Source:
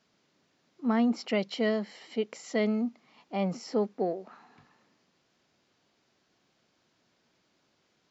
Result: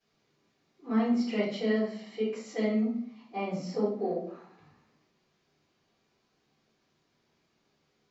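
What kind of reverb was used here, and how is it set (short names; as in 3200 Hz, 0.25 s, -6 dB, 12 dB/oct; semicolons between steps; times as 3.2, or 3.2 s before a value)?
shoebox room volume 79 m³, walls mixed, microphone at 3.6 m; gain -16 dB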